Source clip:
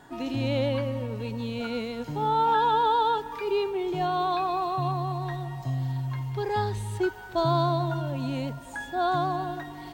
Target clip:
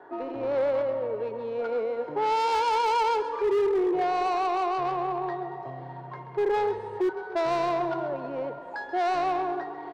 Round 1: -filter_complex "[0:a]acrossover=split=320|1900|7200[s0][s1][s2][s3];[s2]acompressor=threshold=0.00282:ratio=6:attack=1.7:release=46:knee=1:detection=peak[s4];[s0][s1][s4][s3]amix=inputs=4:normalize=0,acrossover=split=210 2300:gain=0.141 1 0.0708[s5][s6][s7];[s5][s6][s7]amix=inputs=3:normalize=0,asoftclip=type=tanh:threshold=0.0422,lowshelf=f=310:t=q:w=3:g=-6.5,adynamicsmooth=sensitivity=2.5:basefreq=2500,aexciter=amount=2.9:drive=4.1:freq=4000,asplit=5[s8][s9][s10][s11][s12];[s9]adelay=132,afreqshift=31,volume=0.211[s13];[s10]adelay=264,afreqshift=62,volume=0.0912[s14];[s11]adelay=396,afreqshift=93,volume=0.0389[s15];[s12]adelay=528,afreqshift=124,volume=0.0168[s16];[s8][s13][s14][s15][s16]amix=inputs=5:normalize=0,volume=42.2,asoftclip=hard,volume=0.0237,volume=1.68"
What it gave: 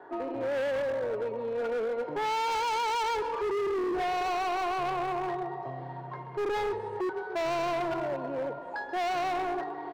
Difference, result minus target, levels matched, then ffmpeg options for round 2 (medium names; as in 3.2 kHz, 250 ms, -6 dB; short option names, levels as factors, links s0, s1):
overload inside the chain: distortion +11 dB; compression: peak gain reduction +5.5 dB
-filter_complex "[0:a]acrossover=split=320|1900|7200[s0][s1][s2][s3];[s2]acompressor=threshold=0.00596:ratio=6:attack=1.7:release=46:knee=1:detection=peak[s4];[s0][s1][s4][s3]amix=inputs=4:normalize=0,acrossover=split=210 2300:gain=0.141 1 0.0708[s5][s6][s7];[s5][s6][s7]amix=inputs=3:normalize=0,asoftclip=type=tanh:threshold=0.0422,lowshelf=f=310:t=q:w=3:g=-6.5,adynamicsmooth=sensitivity=2.5:basefreq=2500,aexciter=amount=2.9:drive=4.1:freq=4000,asplit=5[s8][s9][s10][s11][s12];[s9]adelay=132,afreqshift=31,volume=0.211[s13];[s10]adelay=264,afreqshift=62,volume=0.0912[s14];[s11]adelay=396,afreqshift=93,volume=0.0389[s15];[s12]adelay=528,afreqshift=124,volume=0.0168[s16];[s8][s13][s14][s15][s16]amix=inputs=5:normalize=0,volume=17.8,asoftclip=hard,volume=0.0562,volume=1.68"